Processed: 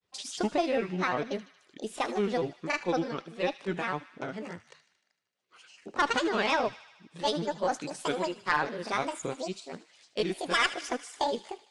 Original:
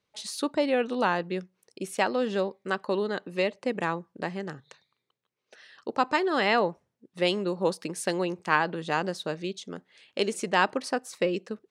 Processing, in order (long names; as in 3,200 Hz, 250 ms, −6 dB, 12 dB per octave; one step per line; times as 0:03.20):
pitch glide at a constant tempo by +4.5 semitones starting unshifted
granular cloud, spray 26 ms, pitch spread up and down by 7 semitones
harmonic generator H 2 −19 dB, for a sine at −14 dBFS
on a send: delay with a high-pass on its return 76 ms, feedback 66%, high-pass 1,800 Hz, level −13.5 dB
on the sum: AAC 48 kbit/s 22,050 Hz